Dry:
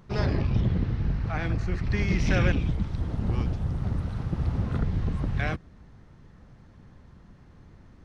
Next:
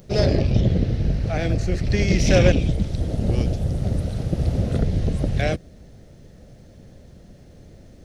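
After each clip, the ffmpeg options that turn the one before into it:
ffmpeg -i in.wav -af "crystalizer=i=8.5:c=0,lowshelf=frequency=780:width_type=q:width=3:gain=9,aeval=exprs='1*(cos(1*acos(clip(val(0)/1,-1,1)))-cos(1*PI/2))+0.0891*(cos(3*acos(clip(val(0)/1,-1,1)))-cos(3*PI/2))':channel_layout=same,volume=-1.5dB" out.wav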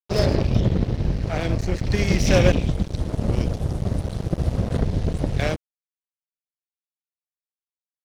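ffmpeg -i in.wav -filter_complex "[0:a]asplit=2[link_01][link_02];[link_02]acompressor=threshold=-25dB:ratio=6,volume=-2.5dB[link_03];[link_01][link_03]amix=inputs=2:normalize=0,aeval=exprs='sgn(val(0))*max(abs(val(0))-0.0473,0)':channel_layout=same,volume=-1dB" out.wav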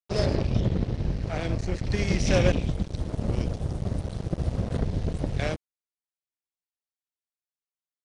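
ffmpeg -i in.wav -af "aresample=22050,aresample=44100,volume=-5dB" out.wav

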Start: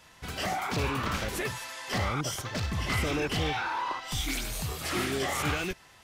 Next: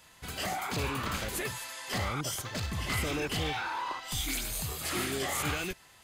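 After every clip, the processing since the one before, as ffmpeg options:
ffmpeg -i in.wav -af "highshelf=frequency=5300:gain=8,bandreject=frequency=5600:width=10,volume=-3.5dB" out.wav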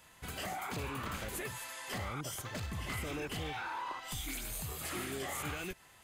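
ffmpeg -i in.wav -af "acompressor=threshold=-36dB:ratio=2.5,equalizer=frequency=4700:width_type=o:width=1:gain=-5,volume=-1.5dB" out.wav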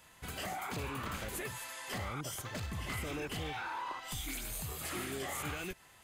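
ffmpeg -i in.wav -af anull out.wav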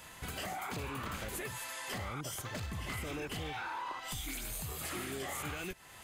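ffmpeg -i in.wav -af "acompressor=threshold=-53dB:ratio=2,volume=8.5dB" out.wav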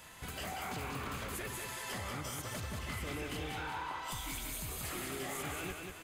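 ffmpeg -i in.wav -af "aecho=1:1:188|376|564|752|940|1128:0.631|0.297|0.139|0.0655|0.0308|0.0145,volume=-2dB" out.wav

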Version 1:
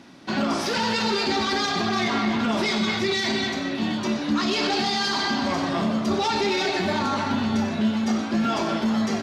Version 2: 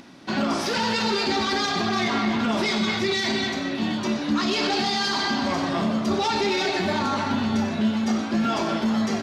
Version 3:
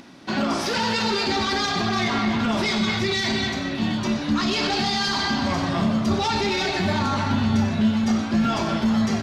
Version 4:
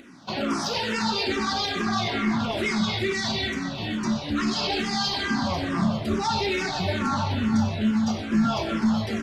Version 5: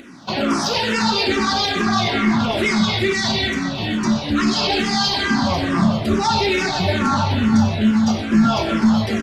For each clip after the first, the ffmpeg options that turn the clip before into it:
ffmpeg -i in.wav -af "acompressor=mode=upward:threshold=-44dB:ratio=2.5" out.wav
ffmpeg -i in.wav -af "asubboost=boost=4:cutoff=150,volume=1dB" out.wav
ffmpeg -i in.wav -filter_complex "[0:a]asplit=2[link_01][link_02];[link_02]afreqshift=-2.3[link_03];[link_01][link_03]amix=inputs=2:normalize=1" out.wav
ffmpeg -i in.wav -filter_complex "[0:a]asplit=2[link_01][link_02];[link_02]adelay=110,highpass=300,lowpass=3400,asoftclip=type=hard:threshold=-20.5dB,volume=-17dB[link_03];[link_01][link_03]amix=inputs=2:normalize=0,volume=7dB" out.wav

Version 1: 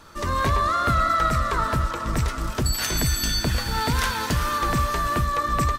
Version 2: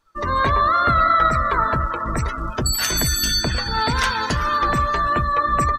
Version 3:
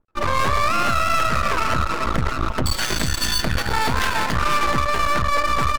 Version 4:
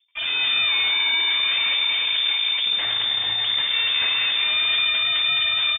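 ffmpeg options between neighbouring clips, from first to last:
ffmpeg -i in.wav -af "afftdn=noise_reduction=26:noise_floor=-33,lowshelf=frequency=390:gain=-6.5,volume=6dB" out.wav
ffmpeg -i in.wav -af "adynamicsmooth=sensitivity=3.5:basefreq=540,aeval=exprs='max(val(0),0)':channel_layout=same,alimiter=limit=-17dB:level=0:latency=1:release=98,volume=8dB" out.wav
ffmpeg -i in.wav -filter_complex "[0:a]asoftclip=type=tanh:threshold=-18.5dB,asplit=2[link_01][link_02];[link_02]aecho=0:1:58.31|209.9:0.316|0.447[link_03];[link_01][link_03]amix=inputs=2:normalize=0,lowpass=frequency=3100:width_type=q:width=0.5098,lowpass=frequency=3100:width_type=q:width=0.6013,lowpass=frequency=3100:width_type=q:width=0.9,lowpass=frequency=3100:width_type=q:width=2.563,afreqshift=-3600" out.wav

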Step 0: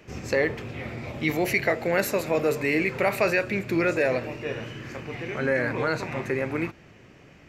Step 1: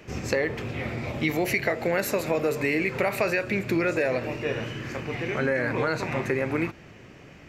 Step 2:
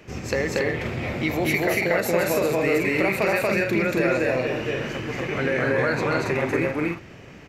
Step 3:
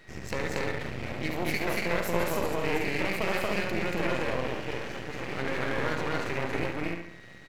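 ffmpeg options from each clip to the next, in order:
ffmpeg -i in.wav -af "acompressor=threshold=-25dB:ratio=4,volume=3.5dB" out.wav
ffmpeg -i in.wav -af "aecho=1:1:233.2|279.9:1|0.631" out.wav
ffmpeg -i in.wav -filter_complex "[0:a]aeval=exprs='val(0)+0.00501*sin(2*PI*1900*n/s)':channel_layout=same,asplit=2[link_01][link_02];[link_02]adelay=70,lowpass=frequency=4700:poles=1,volume=-5dB,asplit=2[link_03][link_04];[link_04]adelay=70,lowpass=frequency=4700:poles=1,volume=0.41,asplit=2[link_05][link_06];[link_06]adelay=70,lowpass=frequency=4700:poles=1,volume=0.41,asplit=2[link_07][link_08];[link_08]adelay=70,lowpass=frequency=4700:poles=1,volume=0.41,asplit=2[link_09][link_10];[link_10]adelay=70,lowpass=frequency=4700:poles=1,volume=0.41[link_11];[link_01][link_03][link_05][link_07][link_09][link_11]amix=inputs=6:normalize=0,aeval=exprs='max(val(0),0)':channel_layout=same,volume=-5dB" out.wav

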